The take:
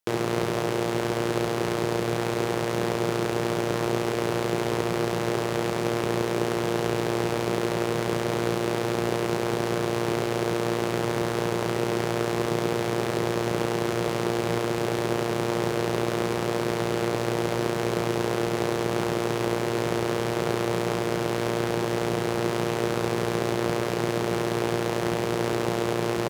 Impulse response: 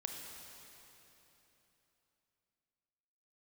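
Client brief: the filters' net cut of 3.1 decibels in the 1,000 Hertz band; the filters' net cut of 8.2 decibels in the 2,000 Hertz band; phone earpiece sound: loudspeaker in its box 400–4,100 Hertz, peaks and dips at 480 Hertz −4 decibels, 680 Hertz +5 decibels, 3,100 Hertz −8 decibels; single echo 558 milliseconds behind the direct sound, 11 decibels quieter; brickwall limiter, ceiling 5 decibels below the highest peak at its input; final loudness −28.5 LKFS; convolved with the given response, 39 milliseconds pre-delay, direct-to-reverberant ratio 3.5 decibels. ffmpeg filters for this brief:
-filter_complex "[0:a]equalizer=frequency=1000:width_type=o:gain=-5,equalizer=frequency=2000:width_type=o:gain=-8,alimiter=limit=-17.5dB:level=0:latency=1,aecho=1:1:558:0.282,asplit=2[link_01][link_02];[1:a]atrim=start_sample=2205,adelay=39[link_03];[link_02][link_03]afir=irnorm=-1:irlink=0,volume=-3dB[link_04];[link_01][link_04]amix=inputs=2:normalize=0,highpass=400,equalizer=frequency=480:width_type=q:width=4:gain=-4,equalizer=frequency=680:width_type=q:width=4:gain=5,equalizer=frequency=3100:width_type=q:width=4:gain=-8,lowpass=frequency=4100:width=0.5412,lowpass=frequency=4100:width=1.3066,volume=4.5dB"

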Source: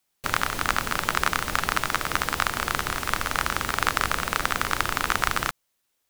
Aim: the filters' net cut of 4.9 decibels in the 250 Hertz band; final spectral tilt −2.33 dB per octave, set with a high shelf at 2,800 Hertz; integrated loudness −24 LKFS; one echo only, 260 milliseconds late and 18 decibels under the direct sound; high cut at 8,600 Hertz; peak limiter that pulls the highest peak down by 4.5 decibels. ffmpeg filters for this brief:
ffmpeg -i in.wav -af "lowpass=8600,equalizer=frequency=250:width_type=o:gain=-7,highshelf=frequency=2800:gain=8,alimiter=limit=-2dB:level=0:latency=1,aecho=1:1:260:0.126,volume=0.5dB" out.wav

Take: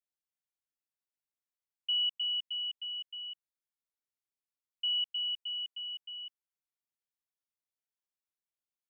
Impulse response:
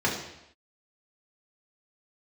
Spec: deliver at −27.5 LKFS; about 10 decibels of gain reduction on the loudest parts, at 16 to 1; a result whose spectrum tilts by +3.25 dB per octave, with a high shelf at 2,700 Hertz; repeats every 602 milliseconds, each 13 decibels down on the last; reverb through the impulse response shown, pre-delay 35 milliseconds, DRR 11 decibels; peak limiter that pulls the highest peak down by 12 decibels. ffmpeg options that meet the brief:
-filter_complex "[0:a]highshelf=frequency=2700:gain=7,acompressor=threshold=-35dB:ratio=16,alimiter=level_in=14dB:limit=-24dB:level=0:latency=1,volume=-14dB,aecho=1:1:602|1204|1806:0.224|0.0493|0.0108,asplit=2[link_01][link_02];[1:a]atrim=start_sample=2205,adelay=35[link_03];[link_02][link_03]afir=irnorm=-1:irlink=0,volume=-24dB[link_04];[link_01][link_04]amix=inputs=2:normalize=0,volume=12dB"

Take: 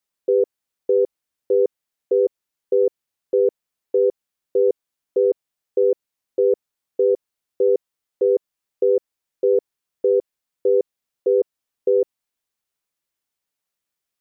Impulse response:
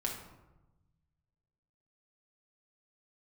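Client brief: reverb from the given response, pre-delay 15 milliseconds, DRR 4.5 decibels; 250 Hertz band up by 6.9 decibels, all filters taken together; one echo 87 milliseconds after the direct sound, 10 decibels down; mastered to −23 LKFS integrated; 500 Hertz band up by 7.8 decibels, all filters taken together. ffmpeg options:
-filter_complex "[0:a]equalizer=frequency=250:width_type=o:gain=5,equalizer=frequency=500:width_type=o:gain=7.5,aecho=1:1:87:0.316,asplit=2[link_01][link_02];[1:a]atrim=start_sample=2205,adelay=15[link_03];[link_02][link_03]afir=irnorm=-1:irlink=0,volume=-7dB[link_04];[link_01][link_04]amix=inputs=2:normalize=0,volume=-9.5dB"

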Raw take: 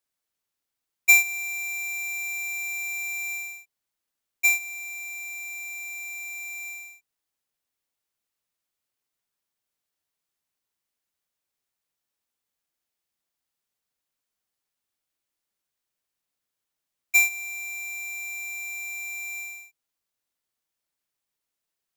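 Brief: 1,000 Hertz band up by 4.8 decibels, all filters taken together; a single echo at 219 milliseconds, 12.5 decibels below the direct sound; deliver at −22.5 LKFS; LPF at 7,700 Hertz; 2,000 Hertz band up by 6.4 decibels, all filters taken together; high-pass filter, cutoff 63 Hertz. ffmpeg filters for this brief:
ffmpeg -i in.wav -af "highpass=63,lowpass=7700,equalizer=frequency=1000:width_type=o:gain=6,equalizer=frequency=2000:width_type=o:gain=7,aecho=1:1:219:0.237,volume=-2.5dB" out.wav

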